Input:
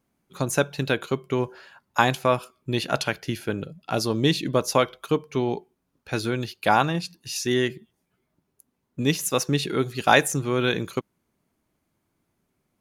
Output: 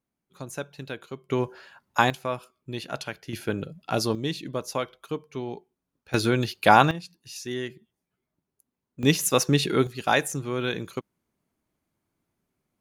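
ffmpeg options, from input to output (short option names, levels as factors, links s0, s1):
-af "asetnsamples=n=441:p=0,asendcmd='1.29 volume volume -1dB;2.1 volume volume -8.5dB;3.33 volume volume -0.5dB;4.15 volume volume -8.5dB;6.14 volume volume 3.5dB;6.91 volume volume -9dB;9.03 volume volume 2dB;9.87 volume volume -5dB',volume=0.251"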